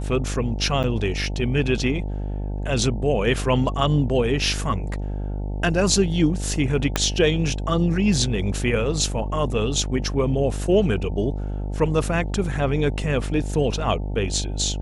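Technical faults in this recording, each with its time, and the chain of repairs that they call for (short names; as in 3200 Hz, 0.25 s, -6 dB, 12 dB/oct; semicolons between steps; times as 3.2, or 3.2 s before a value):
buzz 50 Hz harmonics 18 -27 dBFS
0.83–0.84 gap 8.1 ms
6.96 pop -4 dBFS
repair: de-click; de-hum 50 Hz, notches 18; interpolate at 0.83, 8.1 ms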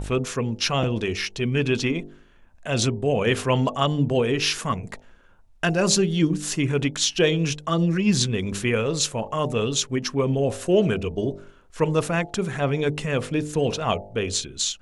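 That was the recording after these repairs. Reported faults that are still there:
6.96 pop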